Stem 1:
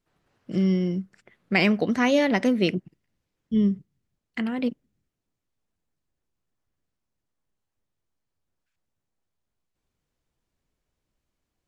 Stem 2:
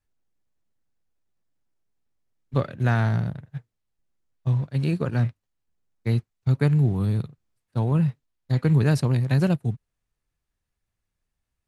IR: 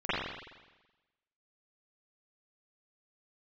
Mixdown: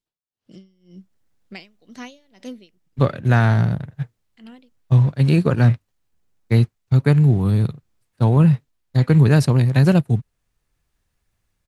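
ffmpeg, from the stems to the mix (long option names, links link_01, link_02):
-filter_complex "[0:a]highshelf=frequency=2600:width_type=q:width=1.5:gain=7.5,aeval=exprs='val(0)*pow(10,-30*(0.5-0.5*cos(2*PI*2*n/s))/20)':channel_layout=same,volume=-11.5dB[link_01];[1:a]dynaudnorm=framelen=120:gausssize=9:maxgain=11dB,adelay=450,volume=-1dB[link_02];[link_01][link_02]amix=inputs=2:normalize=0"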